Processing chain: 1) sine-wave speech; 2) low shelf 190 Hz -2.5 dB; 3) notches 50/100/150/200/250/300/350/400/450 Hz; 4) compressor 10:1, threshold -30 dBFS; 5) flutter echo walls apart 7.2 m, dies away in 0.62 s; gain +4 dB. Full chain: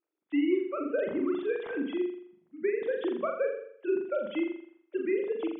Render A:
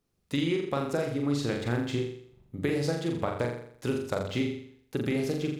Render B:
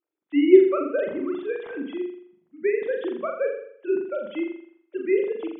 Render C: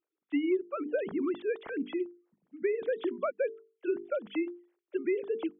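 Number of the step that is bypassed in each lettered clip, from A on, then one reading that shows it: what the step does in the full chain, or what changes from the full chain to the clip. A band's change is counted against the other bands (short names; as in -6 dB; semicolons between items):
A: 1, 500 Hz band -4.0 dB; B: 4, mean gain reduction 3.5 dB; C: 5, echo-to-direct -2.0 dB to none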